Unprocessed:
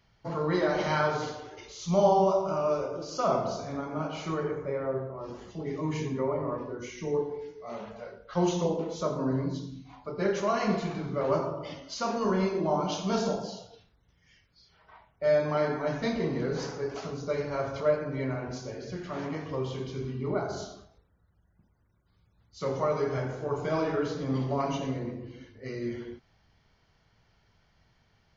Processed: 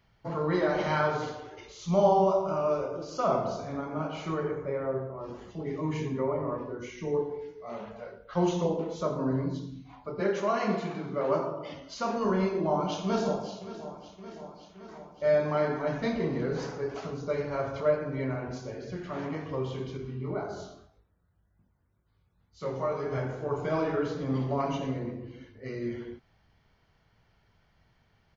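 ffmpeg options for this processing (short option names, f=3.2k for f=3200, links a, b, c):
-filter_complex "[0:a]asettb=1/sr,asplit=3[a][b][c];[a]atrim=end=10.204[d];[b]atrim=start=10.2:end=11.74,asetpts=PTS-STARTPTS,afade=t=in:d=0.004:c=qsin,afade=t=out:st=1.536:d=0.004:c=qsin,highpass=170[e];[c]atrim=start=11.736[f];[d][e]acrossfade=d=0.004:c1=hsin:c2=qsin[g];[g][f]acrossfade=d=0.004:c1=qsin:c2=hsin,asplit=2[h][i];[i]afade=t=in:st=12.47:d=0.01,afade=t=out:st=13.58:d=0.01,aecho=0:1:570|1140|1710|2280|2850|3420|3990|4560|5130:0.188365|0.131855|0.0922988|0.0646092|0.0452264|0.0316585|0.0221609|0.0155127|0.0108589[j];[h][j]amix=inputs=2:normalize=0,asettb=1/sr,asplit=3[k][l][m];[k]atrim=end=19.974[n];[l]atrim=start=19.97:end=23.12,asetpts=PTS-STARTPTS,afade=t=in:d=0.004:c=qsin,afade=t=out:st=3.146:d=0.004:c=qsin,flanger=delay=19.5:depth=3.5:speed=1.9[o];[m]atrim=start=23.116[p];[n][o]acrossfade=d=0.004:c1=hsin:c2=qsin[q];[q][p]acrossfade=d=0.004:c1=qsin:c2=hsin,equalizer=f=5.5k:t=o:w=1.1:g=-5.5"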